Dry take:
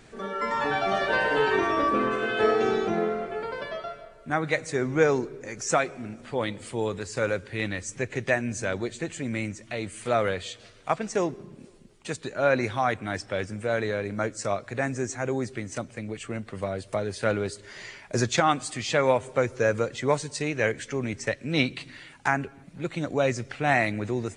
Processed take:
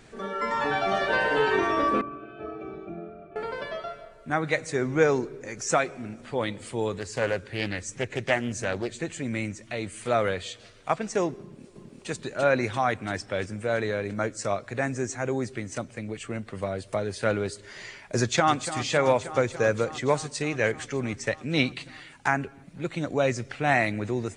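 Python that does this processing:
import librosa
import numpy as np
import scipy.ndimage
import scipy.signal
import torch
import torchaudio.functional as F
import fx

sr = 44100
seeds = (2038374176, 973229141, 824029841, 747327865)

y = fx.octave_resonator(x, sr, note='D', decay_s=0.1, at=(2.01, 3.36))
y = fx.doppler_dist(y, sr, depth_ms=0.28, at=(6.96, 8.93))
y = fx.echo_throw(y, sr, start_s=11.41, length_s=0.68, ms=340, feedback_pct=70, wet_db=-1.5)
y = fx.echo_throw(y, sr, start_s=18.18, length_s=0.5, ms=290, feedback_pct=80, wet_db=-12.0)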